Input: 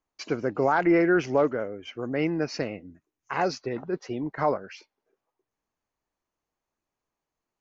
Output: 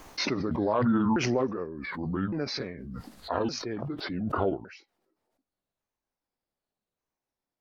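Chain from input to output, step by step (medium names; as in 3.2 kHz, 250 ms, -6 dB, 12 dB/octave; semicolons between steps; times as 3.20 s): sawtooth pitch modulation -9 st, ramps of 1162 ms; swell ahead of each attack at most 24 dB/s; trim -3.5 dB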